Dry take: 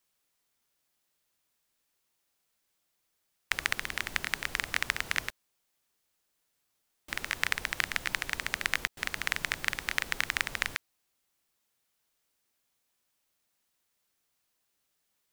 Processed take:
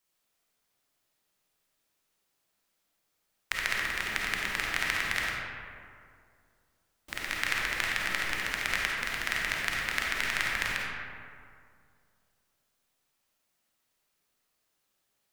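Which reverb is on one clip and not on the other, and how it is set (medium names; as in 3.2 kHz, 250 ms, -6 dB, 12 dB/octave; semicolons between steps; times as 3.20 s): algorithmic reverb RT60 2.3 s, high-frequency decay 0.45×, pre-delay 10 ms, DRR -3.5 dB; trim -2.5 dB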